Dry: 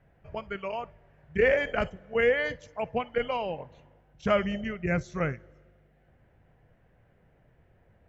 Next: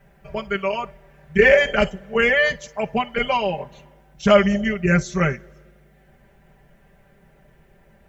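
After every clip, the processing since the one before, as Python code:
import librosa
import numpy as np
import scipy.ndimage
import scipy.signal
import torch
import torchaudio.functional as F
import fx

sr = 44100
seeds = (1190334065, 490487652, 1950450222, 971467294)

y = fx.high_shelf(x, sr, hz=4000.0, db=11.0)
y = y + 0.96 * np.pad(y, (int(5.1 * sr / 1000.0), 0))[:len(y)]
y = y * 10.0 ** (6.0 / 20.0)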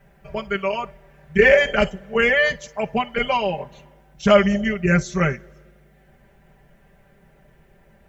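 y = x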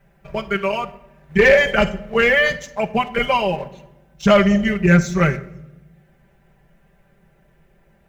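y = fx.leveller(x, sr, passes=1)
y = fx.room_shoebox(y, sr, seeds[0], volume_m3=3200.0, walls='furnished', distance_m=0.78)
y = y * 10.0 ** (-1.0 / 20.0)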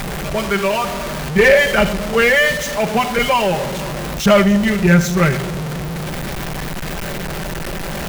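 y = x + 0.5 * 10.0 ** (-18.5 / 20.0) * np.sign(x)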